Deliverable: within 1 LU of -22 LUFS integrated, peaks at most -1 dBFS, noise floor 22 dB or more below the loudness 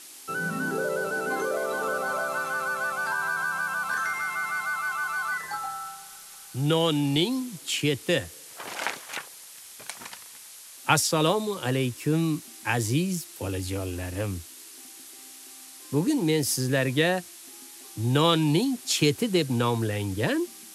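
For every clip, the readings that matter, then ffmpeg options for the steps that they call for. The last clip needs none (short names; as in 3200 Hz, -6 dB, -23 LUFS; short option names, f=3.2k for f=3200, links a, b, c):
noise floor -46 dBFS; noise floor target -49 dBFS; loudness -26.5 LUFS; peak -7.0 dBFS; loudness target -22.0 LUFS
-> -af "afftdn=nr=6:nf=-46"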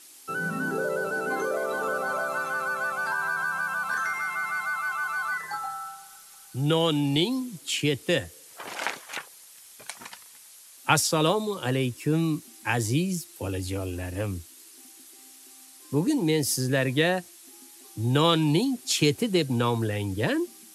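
noise floor -50 dBFS; loudness -27.0 LUFS; peak -7.0 dBFS; loudness target -22.0 LUFS
-> -af "volume=5dB"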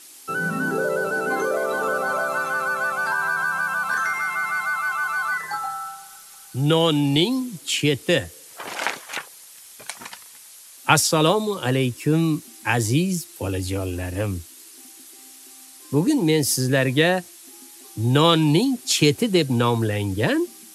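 loudness -22.0 LUFS; peak -2.0 dBFS; noise floor -45 dBFS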